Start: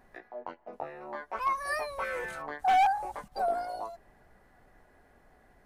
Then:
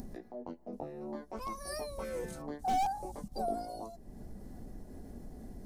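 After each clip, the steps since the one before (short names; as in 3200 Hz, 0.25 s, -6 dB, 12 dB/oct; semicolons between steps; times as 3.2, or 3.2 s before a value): low shelf 210 Hz +6 dB; upward compressor, threshold -37 dBFS; EQ curve 140 Hz 0 dB, 220 Hz +7 dB, 1500 Hz -19 dB, 2600 Hz -15 dB, 5400 Hz 0 dB; gain +2 dB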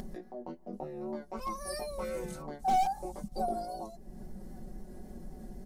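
comb 5.4 ms; vibrato 3.8 Hz 31 cents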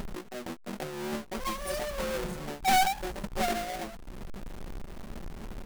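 half-waves squared off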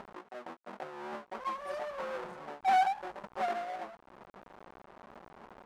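band-pass 960 Hz, Q 1.2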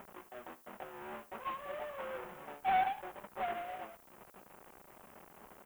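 CVSD 16 kbps; added noise violet -60 dBFS; echo 76 ms -17.5 dB; gain -4 dB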